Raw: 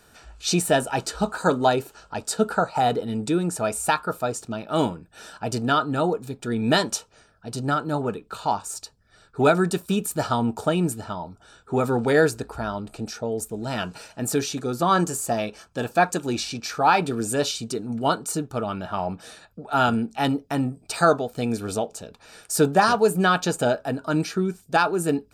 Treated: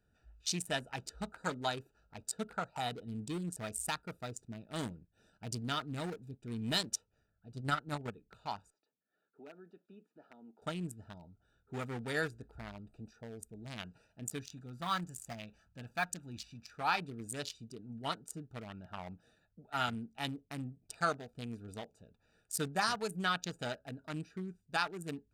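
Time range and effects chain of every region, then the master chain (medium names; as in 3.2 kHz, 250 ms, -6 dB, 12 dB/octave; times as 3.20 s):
3.07–6.89 s: peaking EQ 1.4 kHz -6 dB 2.3 oct + waveshaping leveller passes 1
7.53–8.16 s: peaking EQ 84 Hz +7.5 dB 0.56 oct + transient shaper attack +11 dB, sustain -6 dB
8.70–10.62 s: high-pass 250 Hz 24 dB/octave + compression 1.5:1, threshold -47 dBFS + distance through air 270 m
14.39–16.73 s: companding laws mixed up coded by mu + peaking EQ 400 Hz -9.5 dB 0.98 oct
whole clip: local Wiener filter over 41 samples; amplifier tone stack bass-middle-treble 5-5-5; trim +1 dB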